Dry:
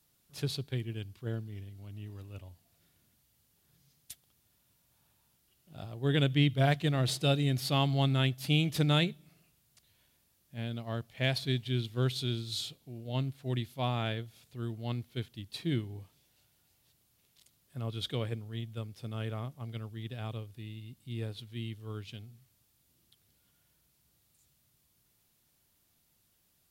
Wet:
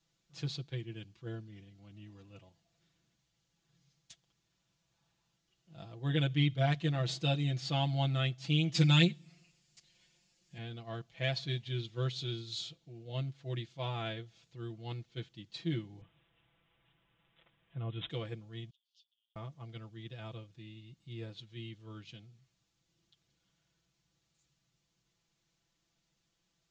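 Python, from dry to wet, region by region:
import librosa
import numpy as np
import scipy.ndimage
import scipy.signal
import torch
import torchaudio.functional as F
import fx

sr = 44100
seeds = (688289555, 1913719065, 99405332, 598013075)

y = fx.chain(x, sr, fx.high_shelf(hz=3400.0, db=9.0),
    fx.comb(ms=5.6, depth=0.96), at=(8.74, 10.58))
y = fx.chain(y, sr, fx.low_shelf(hz=160.0, db=7.5),
    fx.resample_bad(factor=6, down='none', up='filtered'), at=(16.01, 18.1))
y = fx.chain(y, sr, fx.over_compress(threshold_db=-45.0, ratio=-0.5),
    fx.steep_highpass(hz=2900.0, slope=96),
    fx.spacing_loss(db_at_10k=27), at=(18.7, 19.36))
y = scipy.signal.sosfilt(scipy.signal.ellip(4, 1.0, 60, 6900.0, 'lowpass', fs=sr, output='sos'), y)
y = y + 0.89 * np.pad(y, (int(6.0 * sr / 1000.0), 0))[:len(y)]
y = F.gain(torch.from_numpy(y), -6.0).numpy()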